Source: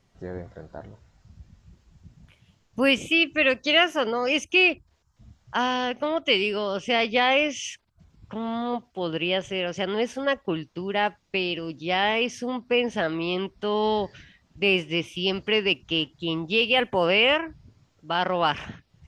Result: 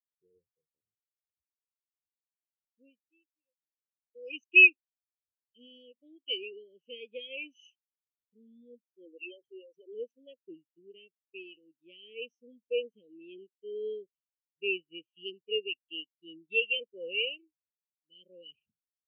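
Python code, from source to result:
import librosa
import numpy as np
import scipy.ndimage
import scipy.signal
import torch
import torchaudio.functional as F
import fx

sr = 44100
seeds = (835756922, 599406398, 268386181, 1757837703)

y = fx.studio_fade_out(x, sr, start_s=0.81, length_s=3.34)
y = fx.peak_eq(y, sr, hz=2900.0, db=3.0, octaves=0.48, at=(7.55, 8.45))
y = fx.envelope_sharpen(y, sr, power=3.0, at=(9.05, 9.93))
y = scipy.signal.sosfilt(scipy.signal.ellip(3, 1.0, 40, [480.0, 2500.0], 'bandstop', fs=sr, output='sos'), y)
y = fx.low_shelf(y, sr, hz=330.0, db=-10.5)
y = fx.spectral_expand(y, sr, expansion=2.5)
y = F.gain(torch.from_numpy(y), 1.0).numpy()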